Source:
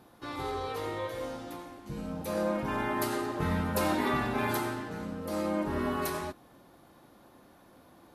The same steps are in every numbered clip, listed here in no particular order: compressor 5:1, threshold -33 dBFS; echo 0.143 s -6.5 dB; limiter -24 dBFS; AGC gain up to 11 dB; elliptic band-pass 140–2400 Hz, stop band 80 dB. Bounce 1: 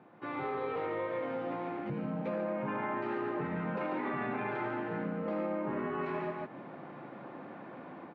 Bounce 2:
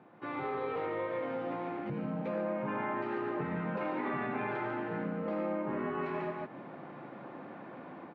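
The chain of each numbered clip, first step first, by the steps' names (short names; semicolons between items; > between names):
limiter > echo > AGC > compressor > elliptic band-pass; echo > AGC > compressor > limiter > elliptic band-pass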